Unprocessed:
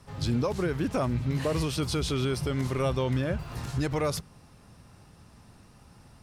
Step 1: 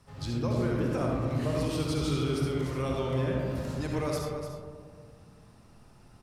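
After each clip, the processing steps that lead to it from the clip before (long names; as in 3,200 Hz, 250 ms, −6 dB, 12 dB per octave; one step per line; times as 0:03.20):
single-tap delay 296 ms −11 dB
comb and all-pass reverb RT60 1.9 s, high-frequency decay 0.25×, pre-delay 25 ms, DRR −1.5 dB
level −6.5 dB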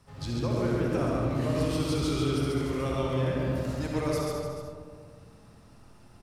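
single-tap delay 138 ms −3 dB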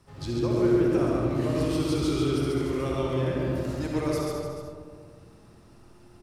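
parametric band 350 Hz +11.5 dB 0.22 octaves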